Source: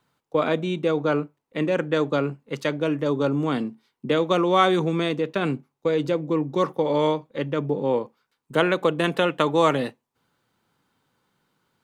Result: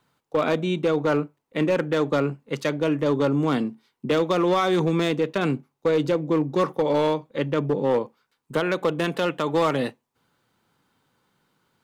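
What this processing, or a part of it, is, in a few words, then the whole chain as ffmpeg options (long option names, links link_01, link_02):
limiter into clipper: -af "alimiter=limit=-12.5dB:level=0:latency=1:release=192,asoftclip=type=hard:threshold=-17dB,volume=2dB"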